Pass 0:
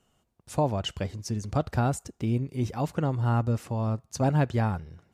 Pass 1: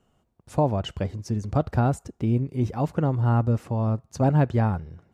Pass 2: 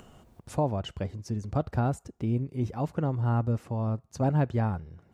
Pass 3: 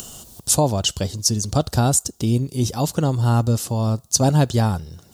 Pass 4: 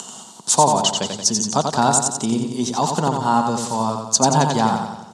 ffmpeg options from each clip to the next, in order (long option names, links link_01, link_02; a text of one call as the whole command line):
ffmpeg -i in.wav -af "highshelf=frequency=2000:gain=-10,volume=4dB" out.wav
ffmpeg -i in.wav -af "acompressor=mode=upward:threshold=-32dB:ratio=2.5,volume=-5dB" out.wav
ffmpeg -i in.wav -af "aexciter=amount=11.6:drive=3.6:freq=3300,volume=8.5dB" out.wav
ffmpeg -i in.wav -filter_complex "[0:a]highpass=frequency=190:width=0.5412,highpass=frequency=190:width=1.3066,equalizer=frequency=310:width_type=q:width=4:gain=-9,equalizer=frequency=540:width_type=q:width=4:gain=-6,equalizer=frequency=950:width_type=q:width=4:gain=10,equalizer=frequency=2600:width_type=q:width=4:gain=-4,equalizer=frequency=5200:width_type=q:width=4:gain=-4,lowpass=frequency=8200:width=0.5412,lowpass=frequency=8200:width=1.3066,asplit=2[link_01][link_02];[link_02]aecho=0:1:89|178|267|356|445|534|623:0.562|0.292|0.152|0.0791|0.0411|0.0214|0.0111[link_03];[link_01][link_03]amix=inputs=2:normalize=0,volume=3.5dB" out.wav